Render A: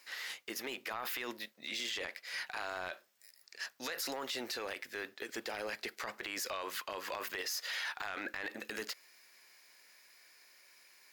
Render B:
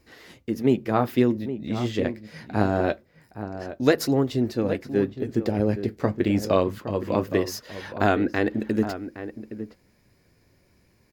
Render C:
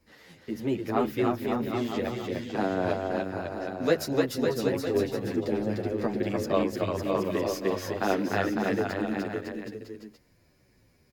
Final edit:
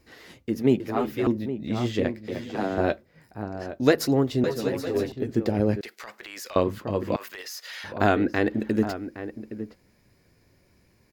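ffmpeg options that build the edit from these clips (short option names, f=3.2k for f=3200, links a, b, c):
-filter_complex "[2:a]asplit=3[a][b][c];[0:a]asplit=2[d][e];[1:a]asplit=6[f][g][h][i][j][k];[f]atrim=end=0.802[l];[a]atrim=start=0.798:end=1.272[m];[g]atrim=start=1.268:end=2.282[n];[b]atrim=start=2.278:end=2.782[o];[h]atrim=start=2.778:end=4.442[p];[c]atrim=start=4.438:end=5.122[q];[i]atrim=start=5.118:end=5.812[r];[d]atrim=start=5.808:end=6.562[s];[j]atrim=start=6.558:end=7.162[t];[e]atrim=start=7.158:end=7.842[u];[k]atrim=start=7.838[v];[l][m]acrossfade=d=0.004:c1=hsin:c2=hsin[w];[w][n]acrossfade=d=0.004:c1=hsin:c2=hsin[x];[x][o]acrossfade=d=0.004:c1=hsin:c2=hsin[y];[y][p]acrossfade=d=0.004:c1=hsin:c2=hsin[z];[z][q]acrossfade=d=0.004:c1=hsin:c2=hsin[aa];[aa][r]acrossfade=d=0.004:c1=hsin:c2=hsin[ab];[ab][s]acrossfade=d=0.004:c1=hsin:c2=hsin[ac];[ac][t]acrossfade=d=0.004:c1=hsin:c2=hsin[ad];[ad][u]acrossfade=d=0.004:c1=hsin:c2=hsin[ae];[ae][v]acrossfade=d=0.004:c1=hsin:c2=hsin"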